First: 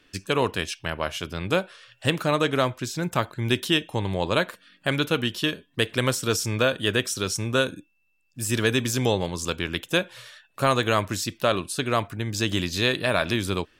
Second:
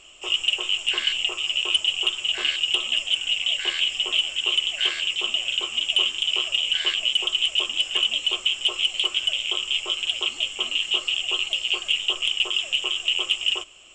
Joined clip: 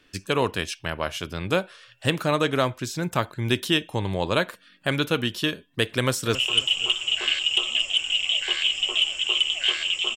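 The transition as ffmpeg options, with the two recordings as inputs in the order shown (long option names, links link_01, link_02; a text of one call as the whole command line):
ffmpeg -i cue0.wav -i cue1.wav -filter_complex "[0:a]apad=whole_dur=10.16,atrim=end=10.16,atrim=end=6.352[link_01];[1:a]atrim=start=1.518:end=5.33[link_02];[link_01][link_02]acrossfade=duration=0.004:curve1=hsin:curve2=hsin,asplit=2[link_03][link_04];[link_04]afade=type=in:start_time=5.98:duration=0.01,afade=type=out:start_time=6.35:duration=0.01,aecho=0:1:270|540|810:0.188365|0.0659277|0.0230747[link_05];[link_03][link_05]amix=inputs=2:normalize=0" out.wav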